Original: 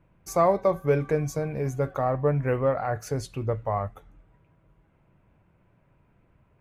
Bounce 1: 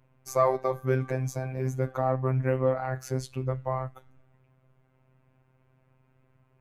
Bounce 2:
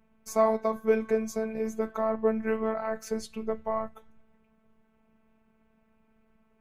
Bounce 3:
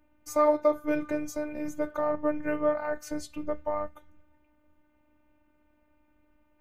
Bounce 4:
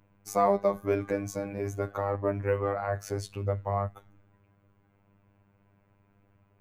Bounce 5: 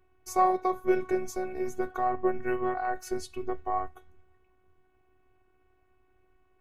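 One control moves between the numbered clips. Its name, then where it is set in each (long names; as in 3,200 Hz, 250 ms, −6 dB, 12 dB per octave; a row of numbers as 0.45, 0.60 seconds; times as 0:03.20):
phases set to zero, frequency: 130, 220, 300, 100, 370 Hertz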